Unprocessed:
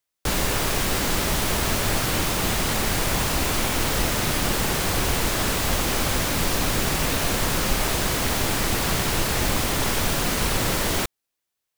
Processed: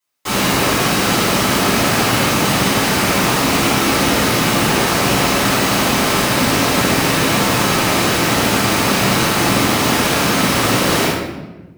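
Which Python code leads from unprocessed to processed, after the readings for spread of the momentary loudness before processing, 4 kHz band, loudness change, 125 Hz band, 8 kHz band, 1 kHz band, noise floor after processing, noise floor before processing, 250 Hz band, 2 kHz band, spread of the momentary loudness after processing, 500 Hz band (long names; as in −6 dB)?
0 LU, +8.5 dB, +8.5 dB, +6.5 dB, +6.0 dB, +10.5 dB, −30 dBFS, −82 dBFS, +11.5 dB, +9.5 dB, 1 LU, +10.0 dB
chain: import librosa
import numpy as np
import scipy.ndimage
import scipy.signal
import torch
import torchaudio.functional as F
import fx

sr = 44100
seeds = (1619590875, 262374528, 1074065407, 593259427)

y = fx.self_delay(x, sr, depth_ms=0.074)
y = scipy.signal.sosfilt(scipy.signal.butter(2, 170.0, 'highpass', fs=sr, output='sos'), y)
y = fx.room_shoebox(y, sr, seeds[0], volume_m3=580.0, walls='mixed', distance_m=9.8)
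y = y * librosa.db_to_amplitude(-6.0)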